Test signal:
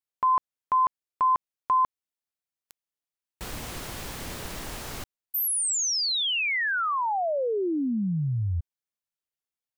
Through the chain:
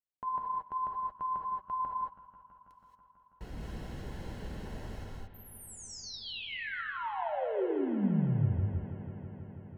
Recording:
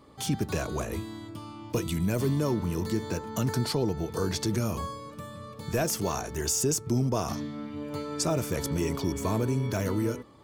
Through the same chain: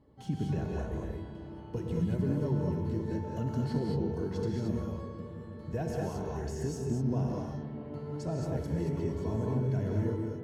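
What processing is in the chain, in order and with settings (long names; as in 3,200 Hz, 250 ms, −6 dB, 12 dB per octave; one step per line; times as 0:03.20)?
flanger 1.2 Hz, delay 1 ms, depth 5.8 ms, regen +64%
RIAA equalisation playback
notch comb filter 1,200 Hz
on a send: bucket-brigade delay 163 ms, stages 4,096, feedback 84%, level −15 dB
on the sum: reverb whose tail is shaped and stops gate 250 ms rising, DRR −1 dB
level −8 dB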